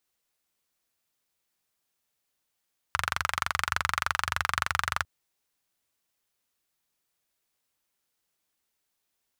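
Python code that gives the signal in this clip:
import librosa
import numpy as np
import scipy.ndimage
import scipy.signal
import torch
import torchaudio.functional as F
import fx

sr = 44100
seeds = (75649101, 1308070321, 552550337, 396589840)

y = fx.engine_single(sr, seeds[0], length_s=2.1, rpm=2800, resonances_hz=(82.0, 1300.0))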